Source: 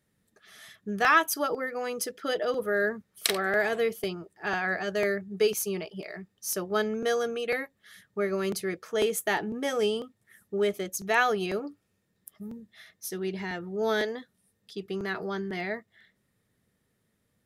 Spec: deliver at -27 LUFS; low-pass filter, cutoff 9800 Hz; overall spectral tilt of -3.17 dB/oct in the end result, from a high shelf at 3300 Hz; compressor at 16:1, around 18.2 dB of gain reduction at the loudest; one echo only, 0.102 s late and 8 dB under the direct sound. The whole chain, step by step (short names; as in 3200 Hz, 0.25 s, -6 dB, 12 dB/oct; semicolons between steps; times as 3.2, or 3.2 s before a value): LPF 9800 Hz; high shelf 3300 Hz +7 dB; compressor 16:1, threshold -34 dBFS; echo 0.102 s -8 dB; gain +11 dB